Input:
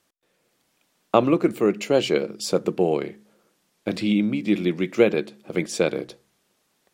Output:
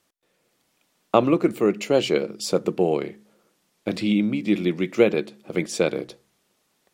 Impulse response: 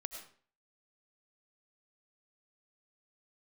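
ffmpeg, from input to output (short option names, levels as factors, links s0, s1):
-af "bandreject=f=1600:w=28"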